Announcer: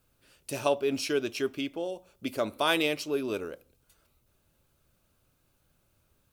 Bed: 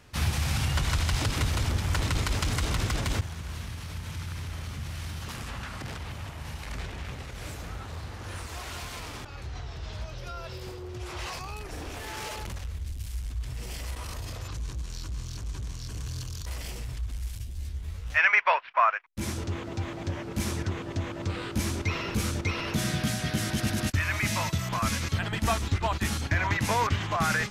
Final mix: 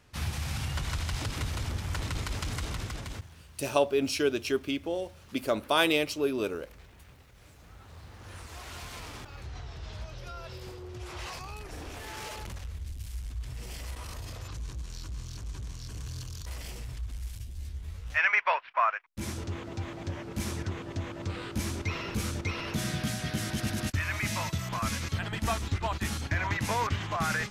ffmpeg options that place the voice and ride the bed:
ffmpeg -i stem1.wav -i stem2.wav -filter_complex "[0:a]adelay=3100,volume=1.5dB[link_01];[1:a]volume=7.5dB,afade=type=out:start_time=2.59:duration=0.87:silence=0.281838,afade=type=in:start_time=7.55:duration=1.43:silence=0.211349[link_02];[link_01][link_02]amix=inputs=2:normalize=0" out.wav

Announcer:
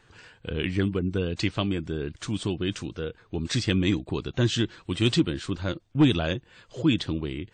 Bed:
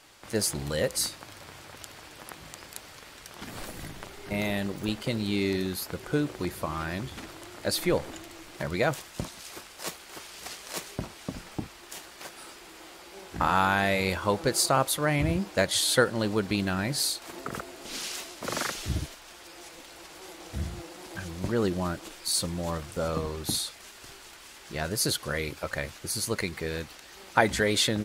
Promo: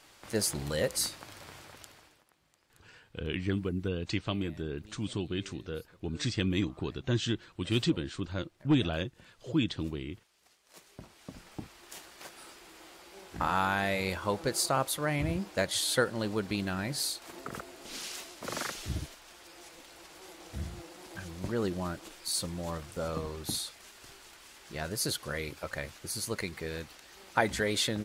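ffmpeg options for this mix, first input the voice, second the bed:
ffmpeg -i stem1.wav -i stem2.wav -filter_complex "[0:a]adelay=2700,volume=-6dB[link_01];[1:a]volume=18dB,afade=type=out:start_time=1.53:duration=0.72:silence=0.0707946,afade=type=in:start_time=10.63:duration=1.31:silence=0.0944061[link_02];[link_01][link_02]amix=inputs=2:normalize=0" out.wav

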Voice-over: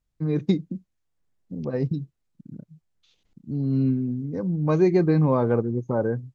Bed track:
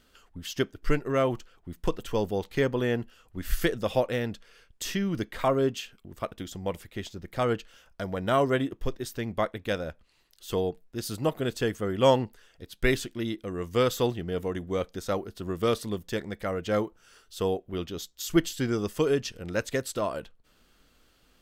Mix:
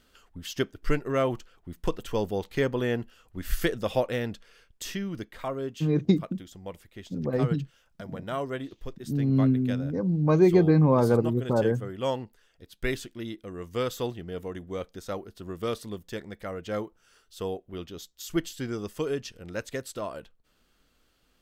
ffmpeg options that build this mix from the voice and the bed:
ffmpeg -i stem1.wav -i stem2.wav -filter_complex "[0:a]adelay=5600,volume=0dB[link_01];[1:a]volume=2.5dB,afade=type=out:start_time=4.45:duration=0.95:silence=0.421697,afade=type=in:start_time=12.22:duration=0.6:silence=0.707946[link_02];[link_01][link_02]amix=inputs=2:normalize=0" out.wav

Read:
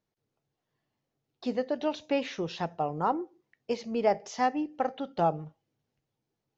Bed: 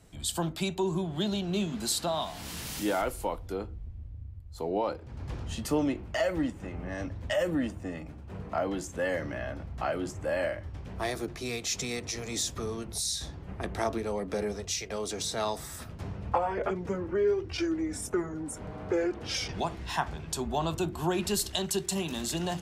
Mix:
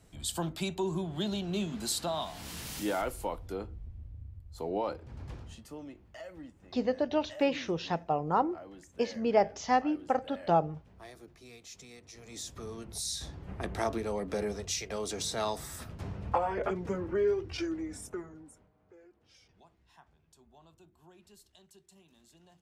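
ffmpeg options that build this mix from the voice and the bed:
ffmpeg -i stem1.wav -i stem2.wav -filter_complex "[0:a]adelay=5300,volume=0.5dB[link_01];[1:a]volume=13dB,afade=type=out:start_time=5.13:duration=0.5:silence=0.188365,afade=type=in:start_time=12.07:duration=1.46:silence=0.158489,afade=type=out:start_time=17.22:duration=1.47:silence=0.0398107[link_02];[link_01][link_02]amix=inputs=2:normalize=0" out.wav

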